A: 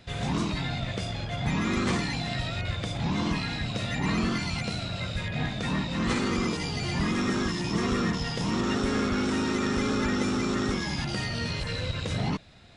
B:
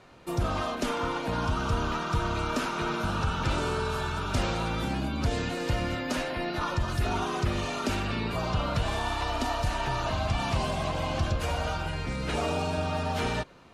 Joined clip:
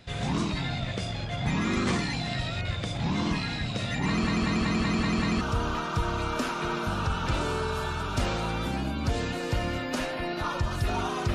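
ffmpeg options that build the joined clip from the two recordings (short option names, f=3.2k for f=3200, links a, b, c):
-filter_complex "[0:a]apad=whole_dur=11.34,atrim=end=11.34,asplit=7[a][b][c][d][e][f][g];[a]atrim=end=4.272[h];[b]atrim=start=4.078:end=4.272[i];[c]atrim=start=4.078:end=4.272[j];[d]atrim=start=4.078:end=4.272[k];[e]atrim=start=4.078:end=4.272[l];[f]atrim=start=4.078:end=4.272[m];[g]atrim=start=4.078:end=4.272[n];[1:a]atrim=start=1.578:end=7.51[o];[h][i]acrossfade=d=0.004:c1=hsin:c2=hsin[p];[p][j]acrossfade=d=0.004:c1=hsin:c2=hsin[q];[q][k]acrossfade=d=0.004:c1=hsin:c2=hsin[r];[r][l]acrossfade=d=0.004:c1=hsin:c2=hsin[s];[s][m]acrossfade=d=0.004:c1=hsin:c2=hsin[t];[t][n]acrossfade=d=0.004:c1=hsin:c2=hsin[u];[u][o]acrossfade=d=0.004:c1=hsin:c2=hsin"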